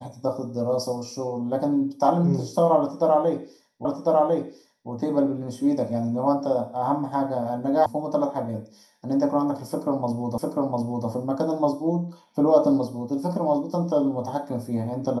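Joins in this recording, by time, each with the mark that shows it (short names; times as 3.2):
3.85 repeat of the last 1.05 s
7.86 sound cut off
10.38 repeat of the last 0.7 s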